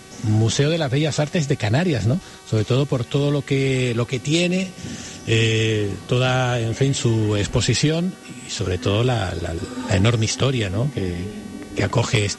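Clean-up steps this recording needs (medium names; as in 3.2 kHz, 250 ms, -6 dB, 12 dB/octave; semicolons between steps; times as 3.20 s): de-hum 379.9 Hz, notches 30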